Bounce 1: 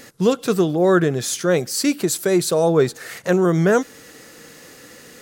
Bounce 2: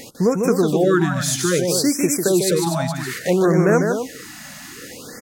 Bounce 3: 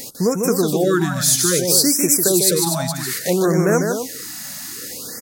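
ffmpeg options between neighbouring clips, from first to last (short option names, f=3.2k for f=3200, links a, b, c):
-af "acompressor=threshold=-30dB:ratio=1.5,aecho=1:1:148.7|244.9:0.562|0.398,afftfilt=real='re*(1-between(b*sr/1024,380*pow(3800/380,0.5+0.5*sin(2*PI*0.61*pts/sr))/1.41,380*pow(3800/380,0.5+0.5*sin(2*PI*0.61*pts/sr))*1.41))':imag='im*(1-between(b*sr/1024,380*pow(3800/380,0.5+0.5*sin(2*PI*0.61*pts/sr))/1.41,380*pow(3800/380,0.5+0.5*sin(2*PI*0.61*pts/sr))*1.41))':win_size=1024:overlap=0.75,volume=5.5dB"
-af "aexciter=amount=2.5:drive=6.3:freq=4k,volume=-1dB"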